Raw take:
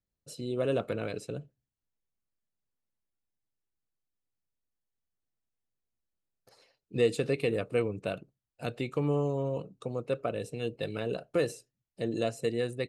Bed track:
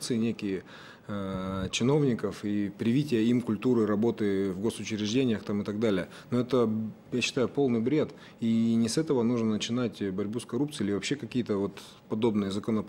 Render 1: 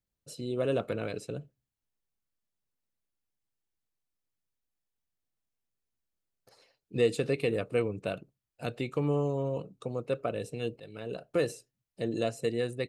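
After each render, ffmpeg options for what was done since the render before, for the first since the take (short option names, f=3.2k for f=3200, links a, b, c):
-filter_complex "[0:a]asplit=2[a][b];[a]atrim=end=10.8,asetpts=PTS-STARTPTS,afade=t=out:st=10.796:d=0.004:c=hsin:silence=0.158489[c];[b]atrim=start=10.8,asetpts=PTS-STARTPTS,afade=t=in:d=0.59:silence=0.158489[d];[c][d]concat=n=2:v=0:a=1"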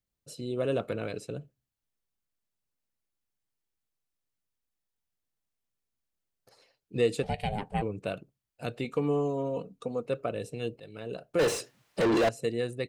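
-filter_complex "[0:a]asplit=3[a][b][c];[a]afade=t=out:st=7.22:d=0.02[d];[b]aeval=exprs='val(0)*sin(2*PI*310*n/s)':c=same,afade=t=in:st=7.22:d=0.02,afade=t=out:st=7.81:d=0.02[e];[c]afade=t=in:st=7.81:d=0.02[f];[d][e][f]amix=inputs=3:normalize=0,asettb=1/sr,asplit=3[g][h][i];[g]atrim=end=8.844[j];[h]atrim=start=8.84:end=10.06,asetpts=PTS-STARTPTS,afade=t=in:d=0.004:c=qsin,afade=t=out:st=1.216:d=0.004:c=qsin,aecho=1:1:4.2:0.54,atrim=end_sample=53802[k];[i]atrim=start=10.056[l];[j][k]acrossfade=d=0.004:c1=hsin:c2=qsin[m];[m][l]acrossfade=d=0.004:c1=qsin:c2=hsin,asettb=1/sr,asplit=3[n][o][p];[n]atrim=end=11.394[q];[o]atrim=start=11.39:end=12.29,asetpts=PTS-STARTPTS,afade=t=in:d=0.004:c=qsin,afade=t=out:st=0.896:d=0.004:c=qsin,asplit=2[r][s];[s]highpass=f=720:p=1,volume=37dB,asoftclip=type=tanh:threshold=-17dB[t];[r][t]amix=inputs=2:normalize=0,lowpass=f=2k:p=1,volume=-6dB[u];[p]atrim=start=12.286[v];[q][u]acrossfade=d=0.004:c1=hsin:c2=qsin[w];[w][v]acrossfade=d=0.004:c1=qsin:c2=hsin"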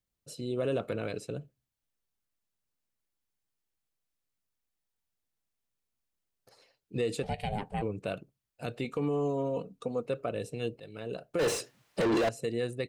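-af "alimiter=limit=-22dB:level=0:latency=1:release=47"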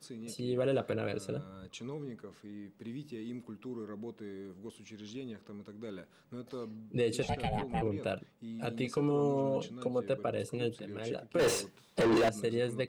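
-filter_complex "[1:a]volume=-17dB[a];[0:a][a]amix=inputs=2:normalize=0"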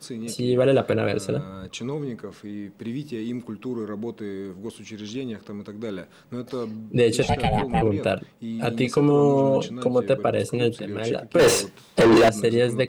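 -af "volume=12dB"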